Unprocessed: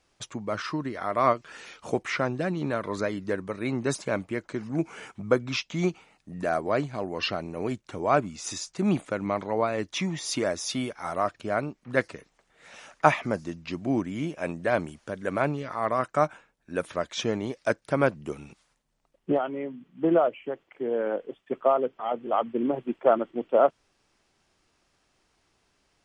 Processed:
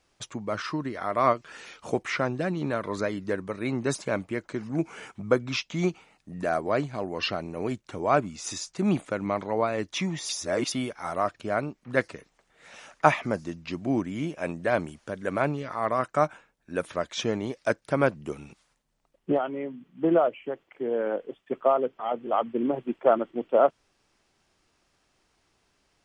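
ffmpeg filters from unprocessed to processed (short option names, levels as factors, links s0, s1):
-filter_complex "[0:a]asplit=3[s0][s1][s2];[s0]atrim=end=10.292[s3];[s1]atrim=start=10.288:end=10.722,asetpts=PTS-STARTPTS,areverse[s4];[s2]atrim=start=10.718[s5];[s3][s4]acrossfade=d=0.004:c1=hsin:c2=hsin[s6];[s6][s5]acrossfade=d=0.004:c1=hsin:c2=hsin"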